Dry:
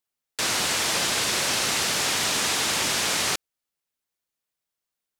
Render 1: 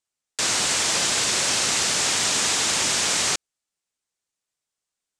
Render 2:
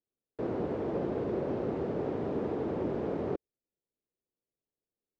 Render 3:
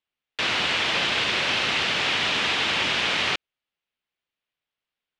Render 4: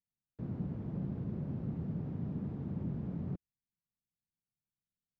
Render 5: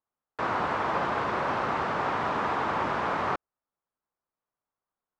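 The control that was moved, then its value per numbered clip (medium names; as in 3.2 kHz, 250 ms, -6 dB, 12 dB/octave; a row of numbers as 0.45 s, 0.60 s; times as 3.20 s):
resonant low-pass, frequency: 7.9 kHz, 420 Hz, 3 kHz, 170 Hz, 1.1 kHz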